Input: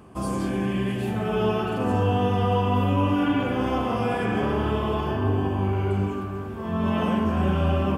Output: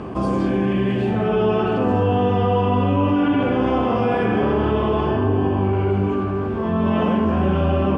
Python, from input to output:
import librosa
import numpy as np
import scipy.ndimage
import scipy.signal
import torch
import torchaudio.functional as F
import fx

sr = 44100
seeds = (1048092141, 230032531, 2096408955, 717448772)

y = scipy.signal.sosfilt(scipy.signal.butter(2, 4000.0, 'lowpass', fs=sr, output='sos'), x)
y = fx.peak_eq(y, sr, hz=400.0, db=4.5, octaves=1.9)
y = fx.env_flatten(y, sr, amount_pct=50)